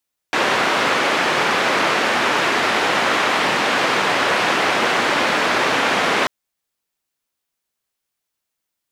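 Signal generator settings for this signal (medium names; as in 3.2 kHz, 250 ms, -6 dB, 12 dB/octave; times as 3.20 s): noise band 240–2000 Hz, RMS -18 dBFS 5.94 s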